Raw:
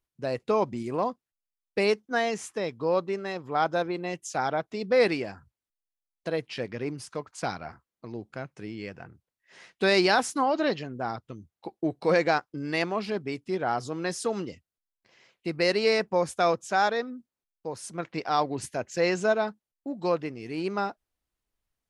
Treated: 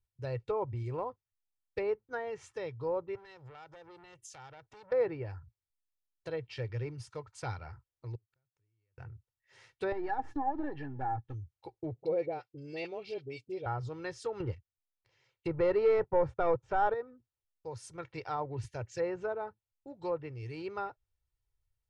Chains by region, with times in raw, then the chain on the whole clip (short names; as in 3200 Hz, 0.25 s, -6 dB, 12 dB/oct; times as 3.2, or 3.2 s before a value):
3.15–4.92 compressor 8:1, threshold -36 dBFS + core saturation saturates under 2200 Hz
8.15–8.98 compressor, threshold -38 dBFS + flipped gate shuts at -42 dBFS, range -35 dB
9.92–11.34 half-wave gain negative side -7 dB + compressor 12:1, threshold -29 dBFS + small resonant body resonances 280/800/1700 Hz, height 17 dB
11.95–13.66 HPF 190 Hz + band shelf 1300 Hz -13.5 dB 1.3 oct + dispersion highs, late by 41 ms, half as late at 1100 Hz
14.4–16.94 sample leveller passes 2 + Bessel low-pass 8800 Hz
whole clip: treble ducked by the level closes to 1200 Hz, closed at -21.5 dBFS; resonant low shelf 150 Hz +9.5 dB, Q 3; comb 2.2 ms, depth 46%; gain -9 dB